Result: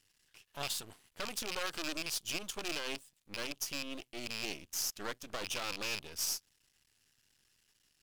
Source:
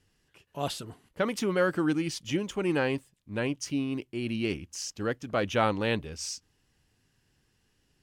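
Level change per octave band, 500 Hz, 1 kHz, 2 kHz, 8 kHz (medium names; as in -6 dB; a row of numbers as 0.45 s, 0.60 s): -15.0 dB, -11.0 dB, -6.5 dB, +1.5 dB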